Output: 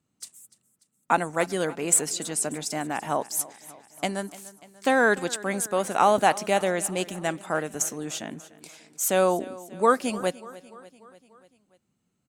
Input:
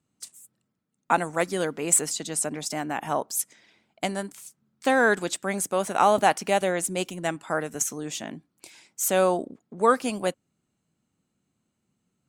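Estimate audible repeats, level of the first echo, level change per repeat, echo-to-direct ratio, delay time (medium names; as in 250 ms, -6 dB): 4, -19.0 dB, -4.5 dB, -17.0 dB, 294 ms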